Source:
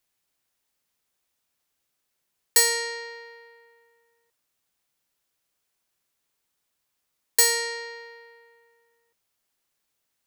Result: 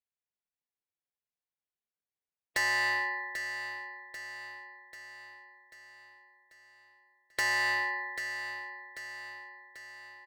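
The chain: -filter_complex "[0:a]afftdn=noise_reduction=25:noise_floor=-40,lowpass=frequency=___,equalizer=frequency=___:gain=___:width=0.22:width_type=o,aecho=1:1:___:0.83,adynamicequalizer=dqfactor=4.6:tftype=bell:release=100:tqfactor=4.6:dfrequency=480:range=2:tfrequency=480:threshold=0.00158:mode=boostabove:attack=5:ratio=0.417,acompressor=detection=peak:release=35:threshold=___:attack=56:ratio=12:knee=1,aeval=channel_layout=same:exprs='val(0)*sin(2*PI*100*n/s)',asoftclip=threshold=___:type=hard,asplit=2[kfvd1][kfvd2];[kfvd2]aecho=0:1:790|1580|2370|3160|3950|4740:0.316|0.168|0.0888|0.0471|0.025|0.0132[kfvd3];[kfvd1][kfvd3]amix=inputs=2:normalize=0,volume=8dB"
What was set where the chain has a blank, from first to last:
2.5k, 1.3k, -10.5, 3.2, -33dB, -33.5dB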